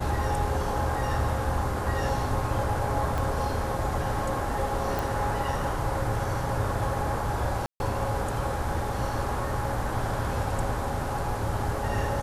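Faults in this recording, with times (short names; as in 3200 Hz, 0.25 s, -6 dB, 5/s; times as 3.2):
3.18 pop
4.99 pop
7.66–7.8 gap 0.141 s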